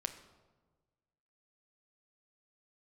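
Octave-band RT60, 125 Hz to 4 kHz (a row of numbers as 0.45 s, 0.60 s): 1.8 s, 1.5 s, 1.5 s, 1.3 s, 0.90 s, 0.80 s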